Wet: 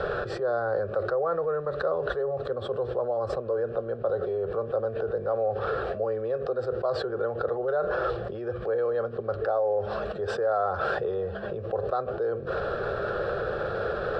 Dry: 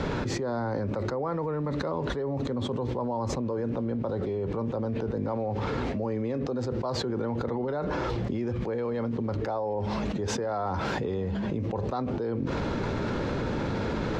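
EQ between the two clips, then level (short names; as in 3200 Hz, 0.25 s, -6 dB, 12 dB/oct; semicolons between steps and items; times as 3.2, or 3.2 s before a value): synth low-pass 7600 Hz, resonance Q 2.1; band shelf 810 Hz +12 dB 2.9 oct; fixed phaser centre 1400 Hz, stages 8; -5.5 dB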